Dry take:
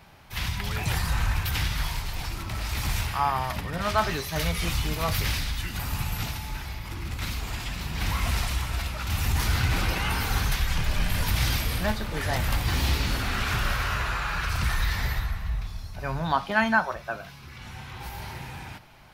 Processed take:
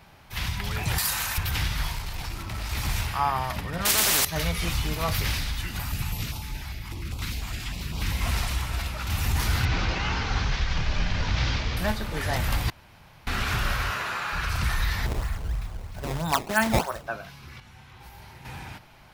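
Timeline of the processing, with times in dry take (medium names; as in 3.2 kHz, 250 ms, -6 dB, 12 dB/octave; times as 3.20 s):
0.98–1.38 s: RIAA curve recording
1.92–2.71 s: valve stage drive 22 dB, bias 0.25
3.85–4.25 s: spectrum-flattening compressor 10:1
5.82–8.21 s: step-sequenced notch 10 Hz 440–1800 Hz
9.65–11.77 s: CVSD coder 32 kbps
12.70–13.27 s: room tone
13.91–14.33 s: high-pass 200 Hz
15.06–17.07 s: decimation with a swept rate 17×, swing 160% 3.1 Hz
17.60–18.45 s: gain -9 dB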